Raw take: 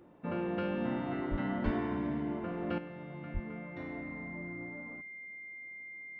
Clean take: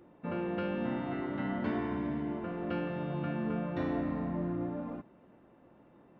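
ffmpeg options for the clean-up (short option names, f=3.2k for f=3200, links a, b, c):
-filter_complex "[0:a]bandreject=f=2.1k:w=30,asplit=3[a][b][c];[a]afade=t=out:st=1.3:d=0.02[d];[b]highpass=f=140:w=0.5412,highpass=f=140:w=1.3066,afade=t=in:st=1.3:d=0.02,afade=t=out:st=1.42:d=0.02[e];[c]afade=t=in:st=1.42:d=0.02[f];[d][e][f]amix=inputs=3:normalize=0,asplit=3[g][h][i];[g]afade=t=out:st=1.64:d=0.02[j];[h]highpass=f=140:w=0.5412,highpass=f=140:w=1.3066,afade=t=in:st=1.64:d=0.02,afade=t=out:st=1.76:d=0.02[k];[i]afade=t=in:st=1.76:d=0.02[l];[j][k][l]amix=inputs=3:normalize=0,asplit=3[m][n][o];[m]afade=t=out:st=3.33:d=0.02[p];[n]highpass=f=140:w=0.5412,highpass=f=140:w=1.3066,afade=t=in:st=3.33:d=0.02,afade=t=out:st=3.45:d=0.02[q];[o]afade=t=in:st=3.45:d=0.02[r];[p][q][r]amix=inputs=3:normalize=0,asetnsamples=n=441:p=0,asendcmd='2.78 volume volume 9.5dB',volume=0dB"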